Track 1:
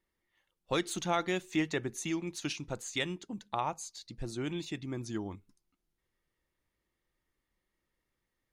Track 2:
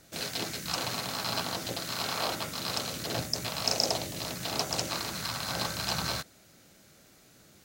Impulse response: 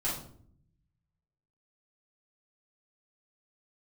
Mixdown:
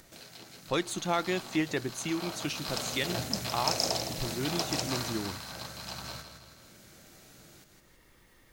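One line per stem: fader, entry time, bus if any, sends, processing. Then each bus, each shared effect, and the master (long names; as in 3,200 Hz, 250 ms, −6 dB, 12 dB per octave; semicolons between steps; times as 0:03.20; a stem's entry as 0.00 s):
+1.5 dB, 0.00 s, no send, no echo send, no processing
0:00.70 −20.5 dB → 0:01.16 −12.5 dB → 0:02.05 −12.5 dB → 0:02.83 −2.5 dB → 0:05.00 −2.5 dB → 0:05.50 −10.5 dB, 0.00 s, send −17.5 dB, echo send −8 dB, no processing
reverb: on, RT60 0.60 s, pre-delay 3 ms
echo: repeating echo 162 ms, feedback 34%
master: upward compression, threshold −42 dBFS; gain into a clipping stage and back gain 13.5 dB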